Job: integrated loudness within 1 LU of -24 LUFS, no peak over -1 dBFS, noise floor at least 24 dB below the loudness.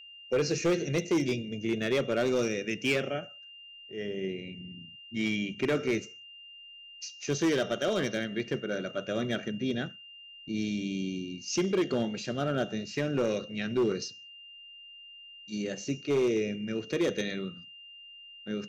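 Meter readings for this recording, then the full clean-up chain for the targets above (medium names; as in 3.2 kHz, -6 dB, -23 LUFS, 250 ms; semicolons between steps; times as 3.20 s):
clipped samples 1.4%; clipping level -21.5 dBFS; steady tone 2.8 kHz; tone level -47 dBFS; loudness -31.0 LUFS; peak level -21.5 dBFS; loudness target -24.0 LUFS
-> clip repair -21.5 dBFS; band-stop 2.8 kHz, Q 30; trim +7 dB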